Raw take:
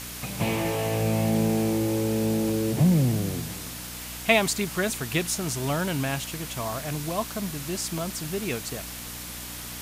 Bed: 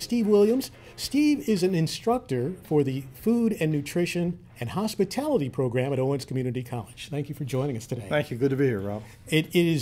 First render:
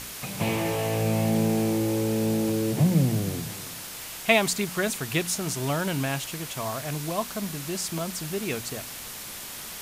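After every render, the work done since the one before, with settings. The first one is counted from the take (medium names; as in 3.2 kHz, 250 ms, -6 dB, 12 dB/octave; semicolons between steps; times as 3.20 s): de-hum 60 Hz, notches 5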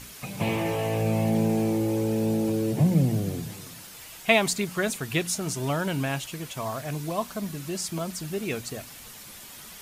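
noise reduction 8 dB, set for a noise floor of -39 dBFS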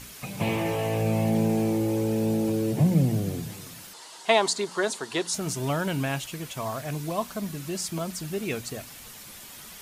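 3.93–5.34 s: cabinet simulation 320–9500 Hz, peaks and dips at 390 Hz +5 dB, 940 Hz +9 dB, 2.4 kHz -9 dB, 4.3 kHz +5 dB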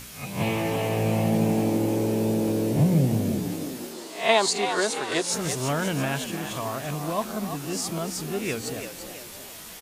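reverse spectral sustain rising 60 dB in 0.37 s; frequency-shifting echo 337 ms, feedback 44%, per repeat +67 Hz, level -8.5 dB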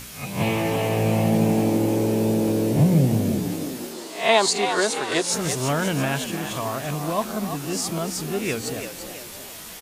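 trim +3 dB; peak limiter -3 dBFS, peak gain reduction 2 dB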